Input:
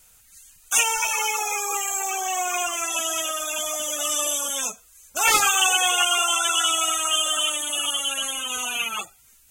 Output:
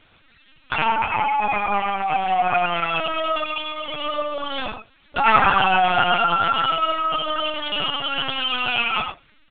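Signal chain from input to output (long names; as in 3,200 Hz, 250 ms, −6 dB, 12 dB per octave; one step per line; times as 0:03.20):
treble cut that deepens with the level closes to 1,600 Hz, closed at −20.5 dBFS
0:03.43–0:04.06: phaser with its sweep stopped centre 1,000 Hz, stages 8
loudspeakers that aren't time-aligned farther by 13 metres −12 dB, 33 metres −7 dB
linear-prediction vocoder at 8 kHz pitch kept
level +7 dB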